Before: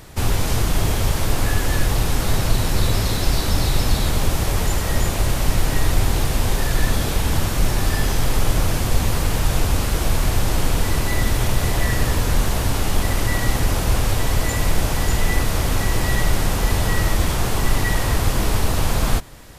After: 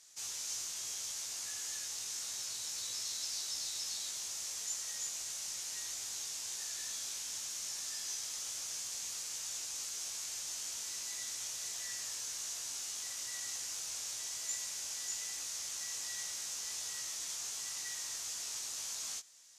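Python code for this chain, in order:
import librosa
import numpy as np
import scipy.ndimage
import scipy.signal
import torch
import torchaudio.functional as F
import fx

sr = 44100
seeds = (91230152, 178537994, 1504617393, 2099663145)

y = fx.bandpass_q(x, sr, hz=6400.0, q=3.1)
y = fx.doubler(y, sr, ms=18.0, db=-5.0)
y = F.gain(torch.from_numpy(y), -4.5).numpy()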